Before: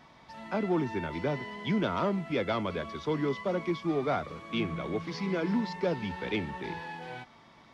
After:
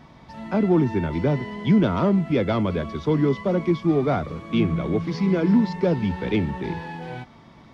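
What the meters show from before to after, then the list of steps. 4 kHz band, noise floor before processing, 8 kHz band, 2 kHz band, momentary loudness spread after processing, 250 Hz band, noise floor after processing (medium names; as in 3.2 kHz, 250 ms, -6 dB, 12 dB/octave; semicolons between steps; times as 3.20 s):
+2.5 dB, -57 dBFS, no reading, +3.0 dB, 11 LU, +11.0 dB, -49 dBFS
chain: bass shelf 400 Hz +12 dB; trim +2.5 dB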